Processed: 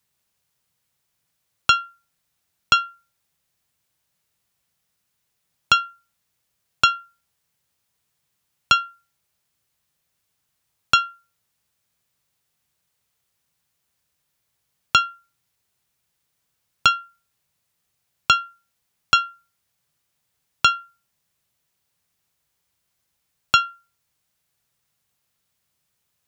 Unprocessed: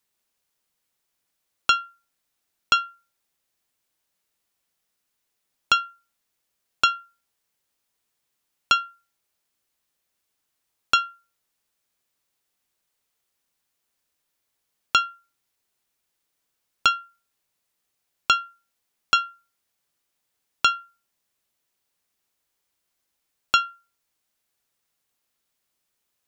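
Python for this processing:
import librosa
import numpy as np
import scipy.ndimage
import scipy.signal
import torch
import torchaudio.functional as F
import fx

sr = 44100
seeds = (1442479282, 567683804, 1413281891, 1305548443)

y = scipy.signal.sosfilt(scipy.signal.butter(2, 49.0, 'highpass', fs=sr, output='sos'), x)
y = fx.low_shelf_res(y, sr, hz=200.0, db=7.5, q=1.5)
y = y * librosa.db_to_amplitude(3.0)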